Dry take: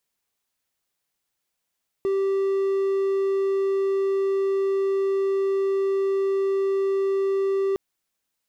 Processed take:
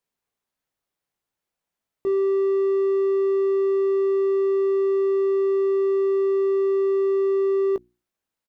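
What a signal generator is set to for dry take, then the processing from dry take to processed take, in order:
tone triangle 390 Hz -18 dBFS 5.71 s
high shelf 2100 Hz -9.5 dB; notches 60/120/180/240/300/360 Hz; doubler 18 ms -9 dB

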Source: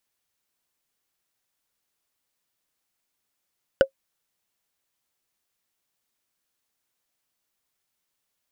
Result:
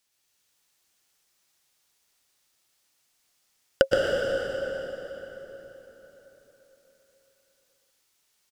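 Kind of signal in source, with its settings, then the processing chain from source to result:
wood hit, lowest mode 540 Hz, decay 0.09 s, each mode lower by 6 dB, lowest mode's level -7 dB
bell 5400 Hz +7 dB 2.4 oct; on a send: echo 0.122 s -6.5 dB; on the sum: plate-style reverb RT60 4.2 s, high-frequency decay 0.75×, pre-delay 0.1 s, DRR -3 dB

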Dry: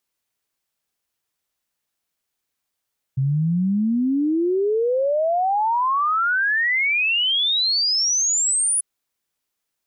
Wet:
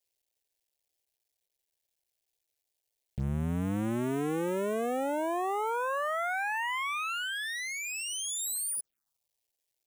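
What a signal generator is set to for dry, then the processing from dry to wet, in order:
log sweep 130 Hz -> 10000 Hz 5.64 s -17 dBFS
cycle switcher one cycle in 2, muted; limiter -24.5 dBFS; envelope phaser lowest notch 210 Hz, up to 4700 Hz, full sweep at -28 dBFS

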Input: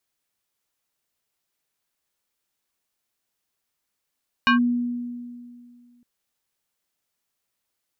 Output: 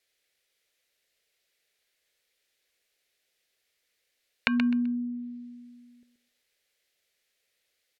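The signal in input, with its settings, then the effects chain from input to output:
FM tone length 1.56 s, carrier 242 Hz, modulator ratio 5.53, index 2, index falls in 0.12 s linear, decay 2.23 s, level -13 dB
treble ducked by the level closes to 480 Hz, closed at -25.5 dBFS; graphic EQ 125/250/500/1000/2000/4000 Hz -5/-6/+11/-11/+10/+6 dB; on a send: feedback echo 0.128 s, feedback 25%, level -9.5 dB

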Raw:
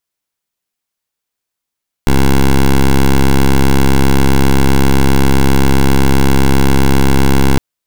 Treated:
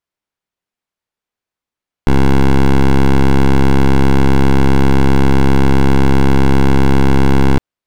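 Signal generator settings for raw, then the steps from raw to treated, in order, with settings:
pulse 67.6 Hz, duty 11% -7.5 dBFS 5.51 s
LPF 2100 Hz 6 dB/oct

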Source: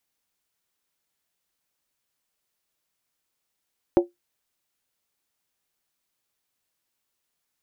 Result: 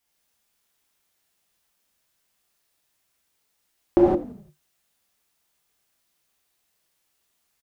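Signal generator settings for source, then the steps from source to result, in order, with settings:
skin hit, lowest mode 350 Hz, decay 0.16 s, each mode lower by 7 dB, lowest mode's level -9.5 dB
frequency-shifting echo 85 ms, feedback 49%, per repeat -50 Hz, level -17 dB; non-linear reverb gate 0.19 s flat, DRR -6 dB

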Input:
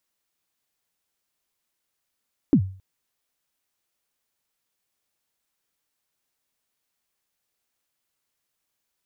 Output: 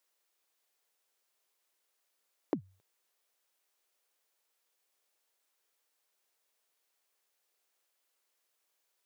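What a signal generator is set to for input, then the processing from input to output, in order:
kick drum length 0.27 s, from 330 Hz, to 95 Hz, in 79 ms, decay 0.42 s, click off, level -9.5 dB
HPF 150 Hz 24 dB/oct; resonant low shelf 310 Hz -9.5 dB, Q 1.5; compressor 6:1, threshold -30 dBFS

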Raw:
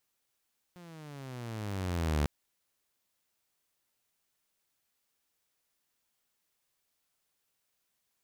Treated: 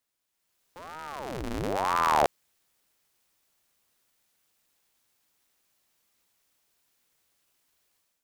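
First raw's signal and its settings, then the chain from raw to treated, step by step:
gliding synth tone saw, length 1.50 s, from 180 Hz, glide -16 st, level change +23.5 dB, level -23 dB
AGC gain up to 10 dB; ring modulator with a swept carrier 620 Hz, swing 80%, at 1 Hz

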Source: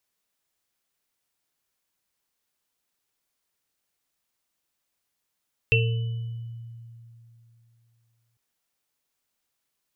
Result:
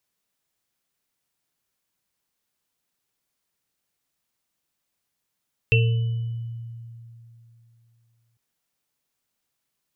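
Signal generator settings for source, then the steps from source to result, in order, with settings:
sine partials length 2.65 s, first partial 116 Hz, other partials 452/2690/2980 Hz, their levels -4/4/-12.5 dB, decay 3.03 s, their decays 0.82/0.32/1.28 s, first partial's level -19 dB
bell 150 Hz +5 dB 1.6 oct

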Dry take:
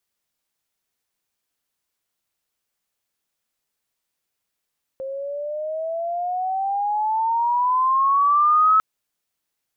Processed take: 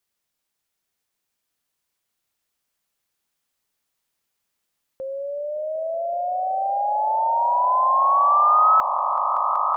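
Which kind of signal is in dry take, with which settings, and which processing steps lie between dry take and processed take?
chirp logarithmic 530 Hz -> 1300 Hz -27 dBFS -> -12 dBFS 3.80 s
on a send: swelling echo 0.189 s, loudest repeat 8, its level -13 dB

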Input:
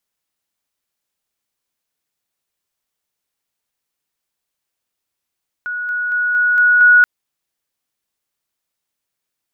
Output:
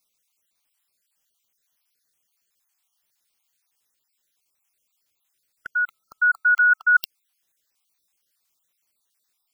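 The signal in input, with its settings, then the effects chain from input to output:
level ladder 1460 Hz -20.5 dBFS, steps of 3 dB, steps 6, 0.23 s 0.00 s
random spectral dropouts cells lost 44%; high shelf 2000 Hz +9 dB; reverse; compressor 12:1, threshold -14 dBFS; reverse

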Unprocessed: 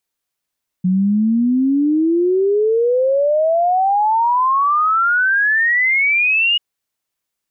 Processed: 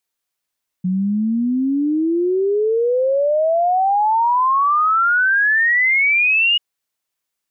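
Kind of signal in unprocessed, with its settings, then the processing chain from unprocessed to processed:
log sweep 180 Hz -> 2900 Hz 5.74 s -12 dBFS
low shelf 400 Hz -4.5 dB

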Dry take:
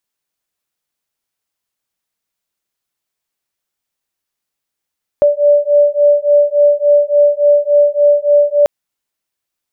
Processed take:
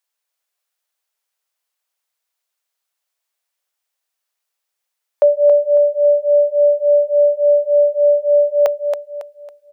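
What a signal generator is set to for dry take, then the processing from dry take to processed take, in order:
beating tones 581 Hz, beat 3.5 Hz, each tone -10.5 dBFS 3.44 s
inverse Chebyshev high-pass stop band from 240 Hz, stop band 40 dB; on a send: feedback echo 0.276 s, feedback 35%, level -6 dB

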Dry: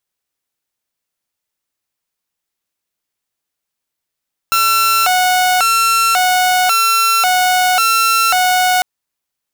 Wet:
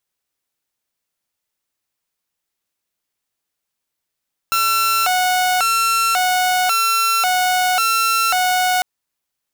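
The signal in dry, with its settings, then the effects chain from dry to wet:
siren hi-lo 734–1350 Hz 0.92/s saw -8 dBFS 4.30 s
limiter -12 dBFS

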